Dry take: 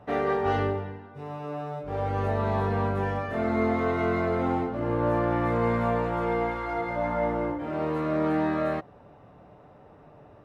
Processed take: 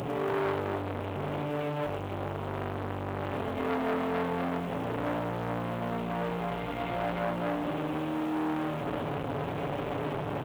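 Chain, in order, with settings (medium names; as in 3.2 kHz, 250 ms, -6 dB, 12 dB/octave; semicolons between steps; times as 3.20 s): one-bit delta coder 16 kbps, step -25.5 dBFS; high-pass 46 Hz 12 dB/octave; peaking EQ 1.6 kHz -13 dB 1.9 oct; comb 7.2 ms, depth 70%; in parallel at -2 dB: compressor with a negative ratio -33 dBFS, ratio -1; on the sum: short-mantissa float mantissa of 4-bit; loudspeakers at several distances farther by 35 m -10 dB, 96 m -2 dB; on a send at -12.5 dB: reverberation RT60 0.50 s, pre-delay 3 ms; on the sum: transformer saturation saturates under 1.2 kHz; trim -4.5 dB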